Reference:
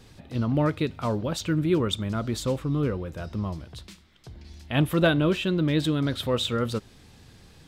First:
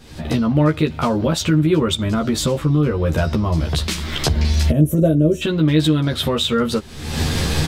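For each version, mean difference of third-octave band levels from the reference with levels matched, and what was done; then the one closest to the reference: 7.0 dB: recorder AGC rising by 56 dB/s; spectral gain 4.7–5.42, 680–5500 Hz -22 dB; doubler 13 ms -2.5 dB; gain +4.5 dB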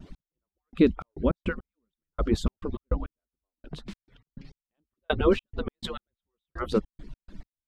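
16.0 dB: median-filter separation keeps percussive; RIAA curve playback; vibrato 0.72 Hz 12 cents; step gate "x....xx.x." 103 bpm -60 dB; gain +4 dB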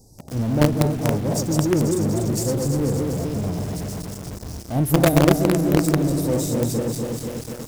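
10.5 dB: regenerating reverse delay 0.122 s, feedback 77%, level -3.5 dB; elliptic band-stop 820–5300 Hz, stop band 40 dB; high shelf 6000 Hz +10.5 dB; in parallel at -6.5 dB: companded quantiser 2-bit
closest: first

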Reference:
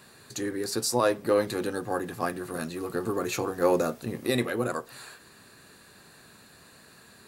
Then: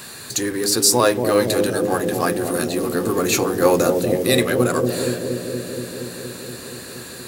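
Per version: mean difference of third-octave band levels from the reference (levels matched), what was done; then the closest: 6.5 dB: G.711 law mismatch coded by mu; high shelf 2900 Hz +8.5 dB; on a send: analogue delay 0.235 s, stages 1024, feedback 79%, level -4 dB; on the sum: gain +6 dB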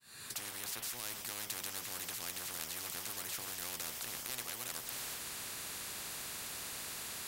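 14.5 dB: opening faded in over 0.71 s; passive tone stack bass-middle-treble 5-5-5; spectral compressor 10:1; gain +2.5 dB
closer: first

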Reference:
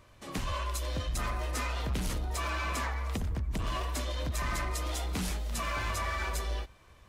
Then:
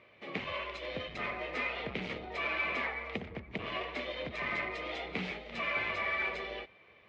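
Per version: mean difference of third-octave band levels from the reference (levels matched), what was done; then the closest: 9.0 dB: speaker cabinet 220–3400 Hz, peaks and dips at 290 Hz -5 dB, 440 Hz +4 dB, 1000 Hz -7 dB, 1500 Hz -6 dB, 2200 Hz +9 dB; gain +1 dB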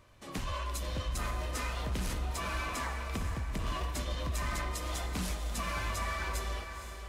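3.0 dB: diffused feedback echo 0.496 s, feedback 43%, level -8 dB; gain -2.5 dB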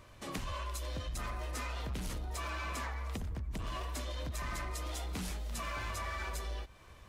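1.0 dB: compressor 3:1, threshold -41 dBFS, peak gain reduction 8.5 dB; gain +2 dB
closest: third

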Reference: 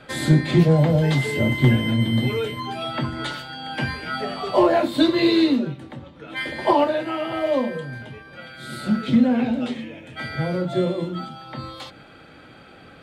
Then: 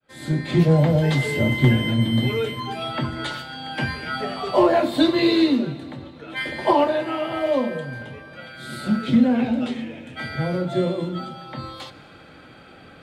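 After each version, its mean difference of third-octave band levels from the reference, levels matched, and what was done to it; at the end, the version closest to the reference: 1.5 dB: opening faded in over 0.73 s; plate-style reverb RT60 2.6 s, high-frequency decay 1×, DRR 15 dB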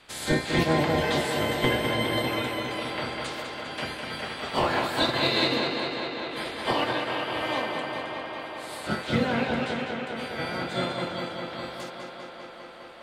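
9.5 dB: spectral limiter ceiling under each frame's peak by 22 dB; tape echo 0.202 s, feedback 88%, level -5 dB, low-pass 5900 Hz; gain -8.5 dB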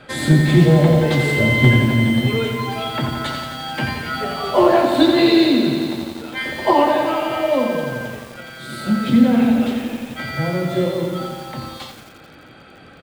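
5.0 dB: on a send: echo 0.426 s -20.5 dB; on the sum: lo-fi delay 87 ms, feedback 80%, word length 7-bit, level -6 dB; gain +2.5 dB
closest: first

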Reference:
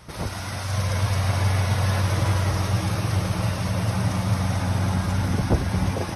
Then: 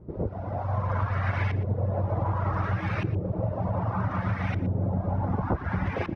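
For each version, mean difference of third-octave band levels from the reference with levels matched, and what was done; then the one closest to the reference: 10.0 dB: reverb removal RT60 0.6 s; compressor, threshold -24 dBFS, peak gain reduction 9.5 dB; LFO low-pass saw up 0.66 Hz 350–2400 Hz; on a send: echo 0.118 s -16 dB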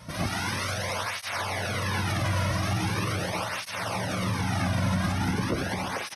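5.0 dB: dynamic EQ 2200 Hz, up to +5 dB, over -43 dBFS, Q 0.71; limiter -18.5 dBFS, peak gain reduction 9 dB; feedback echo 0.112 s, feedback 54%, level -14 dB; tape flanging out of phase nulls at 0.41 Hz, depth 2.6 ms; gain +3.5 dB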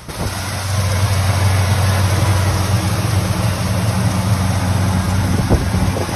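1.0 dB: high shelf 8000 Hz +5.5 dB; thinning echo 0.286 s, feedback 76%, level -15.5 dB; reverse; upward compressor, threshold -24 dBFS; reverse; gain +7 dB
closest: third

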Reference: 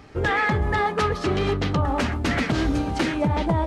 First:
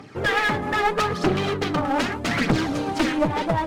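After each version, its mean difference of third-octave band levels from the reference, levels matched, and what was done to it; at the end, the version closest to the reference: 3.5 dB: HPF 120 Hz 24 dB/oct; phaser 0.8 Hz, delay 4 ms, feedback 51%; one-sided clip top -26 dBFS; gain +2 dB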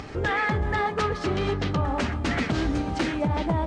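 1.5 dB: LPF 9100 Hz 24 dB/oct; upward compressor, threshold -25 dBFS; on a send: darkening echo 0.382 s, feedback 68%, low-pass 4500 Hz, level -17.5 dB; on the sum: gain -3 dB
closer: second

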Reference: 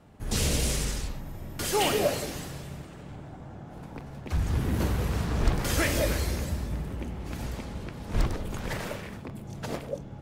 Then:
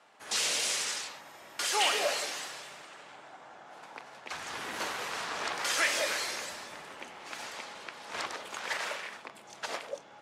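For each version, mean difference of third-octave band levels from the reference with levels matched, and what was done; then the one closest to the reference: 9.5 dB: HPF 920 Hz 12 dB/oct; in parallel at -3 dB: limiter -27 dBFS, peak gain reduction 10.5 dB; on the sum: LPF 7900 Hz 12 dB/oct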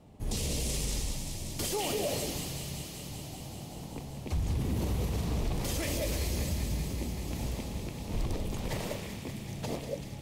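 5.5 dB: bell 1500 Hz -12.5 dB 0.71 oct; limiter -23.5 dBFS, peak gain reduction 11 dB; on a send: thin delay 0.192 s, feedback 83%, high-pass 1700 Hz, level -7 dB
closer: second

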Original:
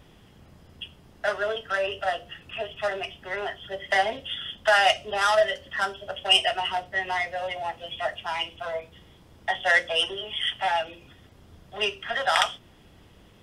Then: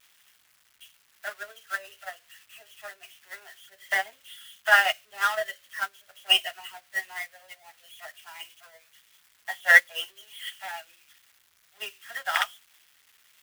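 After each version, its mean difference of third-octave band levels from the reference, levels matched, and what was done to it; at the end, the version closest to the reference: 12.0 dB: switching spikes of -16.5 dBFS; bell 1700 Hz +12 dB 2 oct; upward expander 2.5:1, over -26 dBFS; gain -4.5 dB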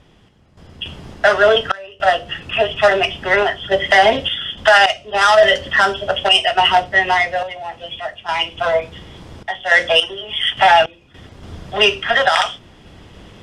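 4.5 dB: LPF 8000 Hz 12 dB/oct; random-step tremolo, depth 95%; maximiser +19.5 dB; gain -1 dB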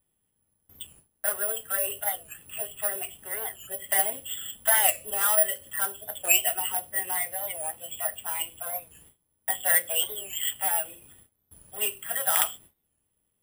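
9.5 dB: gate with hold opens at -41 dBFS; careless resampling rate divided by 4×, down filtered, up zero stuff; record warp 45 rpm, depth 160 cents; gain -7.5 dB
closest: second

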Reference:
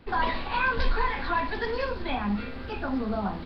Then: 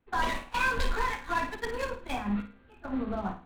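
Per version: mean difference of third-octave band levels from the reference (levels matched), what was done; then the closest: 7.0 dB: Wiener smoothing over 9 samples; gate -29 dBFS, range -19 dB; high shelf 3100 Hz +10.5 dB; flutter echo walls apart 9.2 m, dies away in 0.35 s; gain -3.5 dB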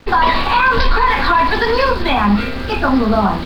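3.0 dB: high shelf 4600 Hz +9 dB; crossover distortion -55 dBFS; dynamic EQ 1100 Hz, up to +6 dB, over -42 dBFS, Q 2.4; maximiser +18.5 dB; gain -3.5 dB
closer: second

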